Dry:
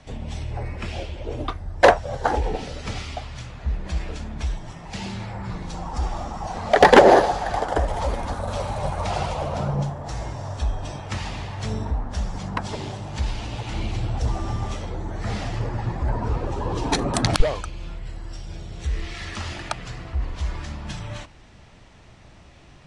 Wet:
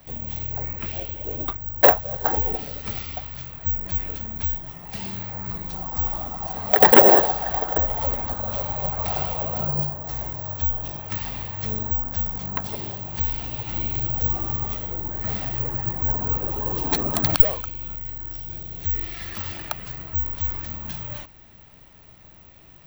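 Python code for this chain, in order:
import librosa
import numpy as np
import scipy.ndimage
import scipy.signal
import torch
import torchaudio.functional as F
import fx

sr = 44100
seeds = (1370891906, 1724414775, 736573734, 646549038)

y = (np.kron(x[::2], np.eye(2)[0]) * 2)[:len(x)]
y = y * librosa.db_to_amplitude(-3.5)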